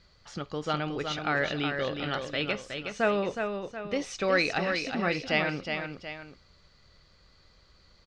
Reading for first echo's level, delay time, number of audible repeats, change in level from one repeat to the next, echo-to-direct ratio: -6.0 dB, 0.367 s, 2, -7.0 dB, -5.0 dB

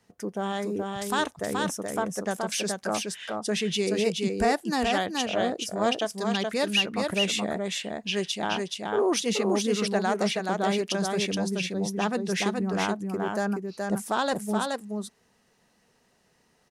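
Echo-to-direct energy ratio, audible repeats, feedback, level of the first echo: -3.5 dB, 1, no steady repeat, -3.5 dB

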